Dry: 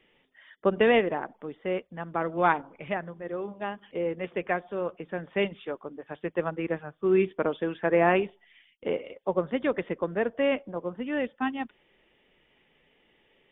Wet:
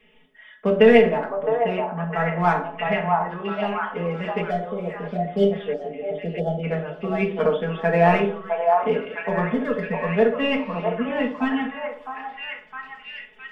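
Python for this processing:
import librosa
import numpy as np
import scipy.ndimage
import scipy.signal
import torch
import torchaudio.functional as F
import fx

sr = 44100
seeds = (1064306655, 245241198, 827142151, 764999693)

p1 = fx.air_absorb(x, sr, metres=330.0, at=(1.84, 3.32))
p2 = np.clip(p1, -10.0 ** (-22.0 / 20.0), 10.0 ** (-22.0 / 20.0))
p3 = p1 + (p2 * librosa.db_to_amplitude(-10.0))
p4 = fx.fixed_phaser(p3, sr, hz=520.0, stages=8, at=(9.49, 10.07))
p5 = fx.room_shoebox(p4, sr, seeds[0], volume_m3=550.0, walls='furnished', distance_m=1.7)
p6 = fx.spec_box(p5, sr, start_s=4.42, length_s=2.22, low_hz=850.0, high_hz=2900.0, gain_db=-28)
p7 = fx.notch(p6, sr, hz=380.0, q=12.0)
p8 = p7 + 0.96 * np.pad(p7, (int(4.7 * sr / 1000.0), 0))[:len(p7)]
p9 = p8 + fx.echo_stepped(p8, sr, ms=660, hz=840.0, octaves=0.7, feedback_pct=70, wet_db=0.0, dry=0)
y = p9 * librosa.db_to_amplitude(-1.0)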